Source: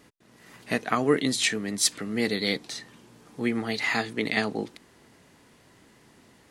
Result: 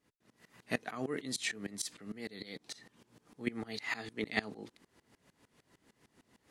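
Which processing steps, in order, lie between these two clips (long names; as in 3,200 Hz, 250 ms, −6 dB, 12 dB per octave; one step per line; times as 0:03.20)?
0:01.90–0:03.47: downward compressor 5 to 1, threshold −29 dBFS, peak gain reduction 8.5 dB
tremolo with a ramp in dB swelling 6.6 Hz, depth 21 dB
level −4.5 dB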